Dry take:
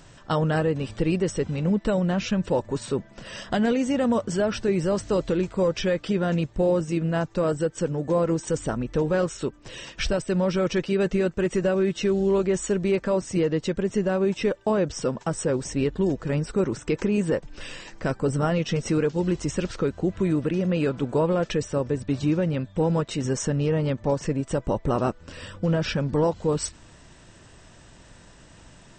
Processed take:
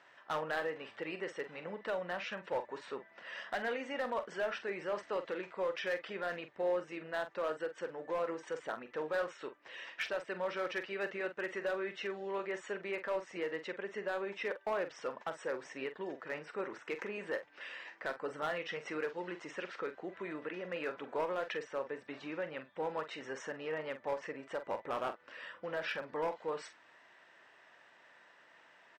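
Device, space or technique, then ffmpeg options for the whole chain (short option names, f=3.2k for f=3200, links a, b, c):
megaphone: -filter_complex "[0:a]highpass=670,lowpass=2.6k,equalizer=f=1.9k:t=o:w=0.48:g=6,asoftclip=type=hard:threshold=-22.5dB,asplit=2[a][b];[b]adelay=45,volume=-10.5dB[c];[a][c]amix=inputs=2:normalize=0,volume=-6.5dB"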